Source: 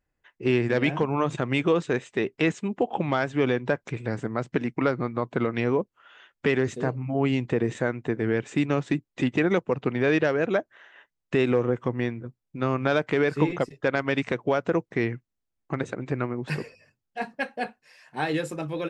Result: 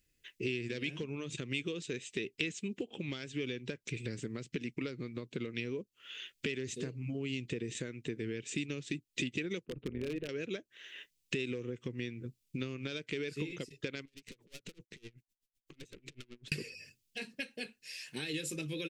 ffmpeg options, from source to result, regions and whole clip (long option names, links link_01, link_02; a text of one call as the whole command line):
ffmpeg -i in.wav -filter_complex "[0:a]asettb=1/sr,asplit=3[link_01][link_02][link_03];[link_01]atrim=end=9.654[link_04];[link_02]atrim=start=9.65:end=10.29,asetpts=PTS-STARTPTS,afade=type=in:duration=0.004:curve=qsin,afade=type=out:start_time=0.636:duration=0.004:curve=qsin,lowpass=1100,tremolo=f=170:d=0.667,aeval=exprs='0.119*(abs(mod(val(0)/0.119+3,4)-2)-1)':channel_layout=same[link_05];[link_03]atrim=start=10.286[link_06];[link_04][link_05]acrossfade=duration=0.004:curve1=hsin:curve2=qsin[link_07];[link_07][link_06]acrossfade=duration=0.004:curve1=qsin:curve2=hsin,asettb=1/sr,asplit=3[link_08][link_09][link_10];[link_08]atrim=end=14.054[link_11];[link_09]atrim=start=14.05:end=16.52,asetpts=PTS-STARTPTS,afade=type=in:duration=0.004:curve=qsin,afade=type=out:start_time=2.466:duration=0.004:curve=qsin,aeval=exprs='(tanh(56.2*val(0)+0.5)-tanh(0.5))/56.2':channel_layout=same,acompressor=threshold=-43dB:ratio=12:attack=3.2:release=140:knee=1:detection=peak,aeval=exprs='val(0)*pow(10,-28*(0.5-0.5*cos(2*PI*7.9*n/s))/20)':channel_layout=same[link_12];[link_10]atrim=start=16.516[link_13];[link_11][link_12]acrossfade=duration=0.004:curve1=hsin:curve2=qsin[link_14];[link_14][link_13]acrossfade=duration=0.004:curve1=qsin:curve2=hsin,highshelf=frequency=2200:gain=9,acompressor=threshold=-36dB:ratio=6,firequalizer=gain_entry='entry(430,0);entry(730,-20);entry(2500,4)':delay=0.05:min_phase=1,volume=1dB" out.wav